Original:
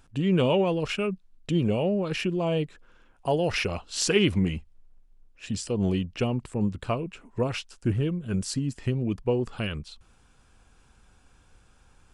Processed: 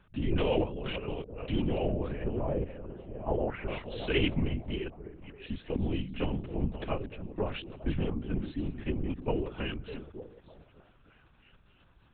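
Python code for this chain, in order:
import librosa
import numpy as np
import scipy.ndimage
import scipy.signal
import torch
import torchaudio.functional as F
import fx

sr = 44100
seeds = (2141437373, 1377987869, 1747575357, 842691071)

p1 = fx.reverse_delay(x, sr, ms=408, wet_db=-10.5)
p2 = fx.over_compress(p1, sr, threshold_db=-33.0, ratio=-1.0, at=(0.64, 1.09))
p3 = fx.lowpass(p2, sr, hz=1700.0, slope=24, at=(2.12, 3.68))
p4 = p3 + fx.echo_stepped(p3, sr, ms=301, hz=220.0, octaves=0.7, feedback_pct=70, wet_db=-9.0, dry=0)
p5 = fx.lpc_vocoder(p4, sr, seeds[0], excitation='whisper', order=10)
y = p5 * librosa.db_to_amplitude(-5.5)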